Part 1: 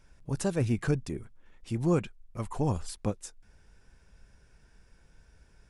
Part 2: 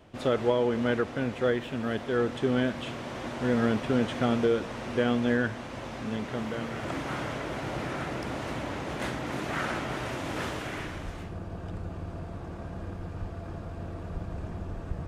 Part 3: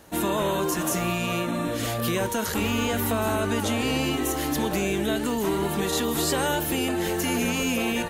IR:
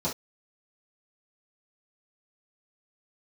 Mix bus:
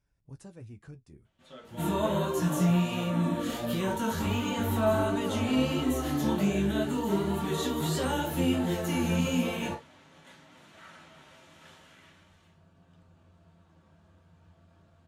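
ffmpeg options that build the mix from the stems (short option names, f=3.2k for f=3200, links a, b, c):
-filter_complex "[0:a]lowshelf=f=160:g=7.5,alimiter=limit=-18dB:level=0:latency=1:release=405,volume=-14.5dB[a];[1:a]tiltshelf=f=1.3k:g=-8,adelay=1250,volume=-18.5dB,asplit=2[b][c];[c]volume=-8.5dB[d];[2:a]flanger=delay=15.5:depth=7.6:speed=1.4,adelay=1650,volume=-2dB,asplit=2[e][f];[f]volume=-7.5dB[g];[3:a]atrim=start_sample=2205[h];[d][g]amix=inputs=2:normalize=0[i];[i][h]afir=irnorm=-1:irlink=0[j];[a][b][e][j]amix=inputs=4:normalize=0,highpass=49,flanger=delay=7:depth=6.9:regen=-46:speed=0.39:shape=sinusoidal"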